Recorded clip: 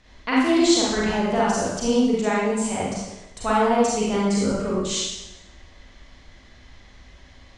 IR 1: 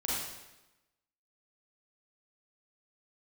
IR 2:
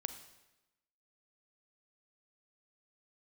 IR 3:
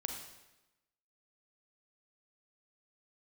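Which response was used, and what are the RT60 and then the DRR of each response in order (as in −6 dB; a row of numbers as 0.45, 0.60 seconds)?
1; 1.0, 1.0, 1.0 seconds; −7.0, 9.5, 3.0 decibels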